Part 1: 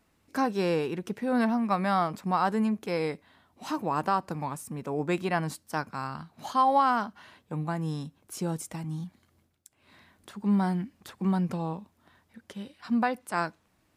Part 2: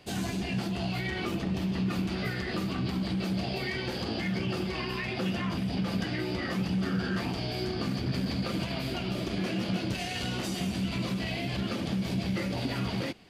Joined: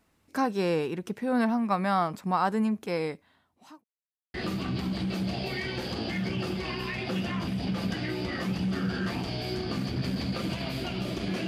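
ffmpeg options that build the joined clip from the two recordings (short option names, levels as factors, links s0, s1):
-filter_complex "[0:a]apad=whole_dur=11.47,atrim=end=11.47,asplit=2[s0][s1];[s0]atrim=end=3.84,asetpts=PTS-STARTPTS,afade=t=out:st=2.92:d=0.92[s2];[s1]atrim=start=3.84:end=4.34,asetpts=PTS-STARTPTS,volume=0[s3];[1:a]atrim=start=2.44:end=9.57,asetpts=PTS-STARTPTS,afade=t=in:d=0.004:c=hsin[s4];[s2][s3][s4]concat=n=3:v=0:a=1"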